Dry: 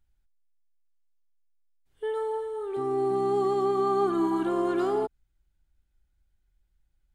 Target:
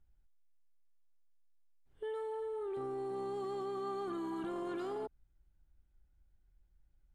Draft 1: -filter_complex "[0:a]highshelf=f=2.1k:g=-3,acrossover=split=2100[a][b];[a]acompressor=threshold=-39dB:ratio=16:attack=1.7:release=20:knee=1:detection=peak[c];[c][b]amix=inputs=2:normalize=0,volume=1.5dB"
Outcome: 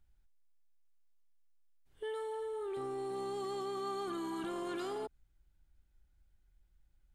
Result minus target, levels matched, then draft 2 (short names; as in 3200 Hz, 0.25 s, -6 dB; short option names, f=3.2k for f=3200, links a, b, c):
4000 Hz band +7.5 dB
-filter_complex "[0:a]highshelf=f=2.1k:g=-13.5,acrossover=split=2100[a][b];[a]acompressor=threshold=-39dB:ratio=16:attack=1.7:release=20:knee=1:detection=peak[c];[c][b]amix=inputs=2:normalize=0,volume=1.5dB"